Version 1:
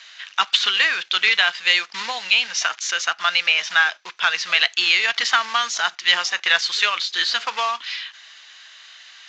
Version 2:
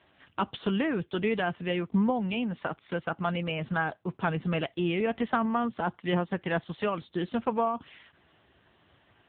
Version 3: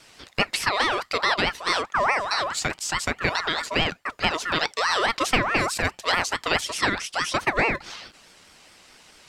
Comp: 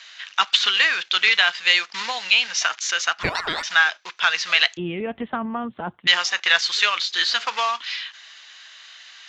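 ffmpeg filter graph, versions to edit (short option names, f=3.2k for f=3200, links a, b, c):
-filter_complex "[0:a]asplit=3[a][b][c];[a]atrim=end=3.232[d];[2:a]atrim=start=3.228:end=3.632[e];[b]atrim=start=3.628:end=4.772[f];[1:a]atrim=start=4.768:end=6.072[g];[c]atrim=start=6.068[h];[d][e]acrossfade=d=0.004:c1=hsin:c2=hsin[i];[i][f]acrossfade=d=0.004:c1=hsin:c2=hsin[j];[j][g]acrossfade=d=0.004:c1=hsin:c2=hsin[k];[k][h]acrossfade=d=0.004:c1=hsin:c2=hsin"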